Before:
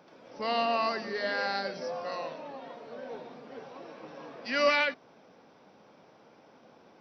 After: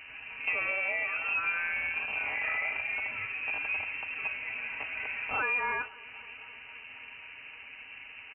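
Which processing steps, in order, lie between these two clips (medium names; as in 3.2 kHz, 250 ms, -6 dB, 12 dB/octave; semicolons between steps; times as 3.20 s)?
rattle on loud lows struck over -49 dBFS, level -36 dBFS; comb 4.8 ms, depth 86%; compression 10:1, threshold -35 dBFS, peak gain reduction 17 dB; on a send: thinning echo 223 ms, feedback 81%, level -22 dB; on the sum: mains buzz 100 Hz, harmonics 20, -62 dBFS -4 dB/octave; tape speed -16%; frequency inversion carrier 2.9 kHz; trim +7 dB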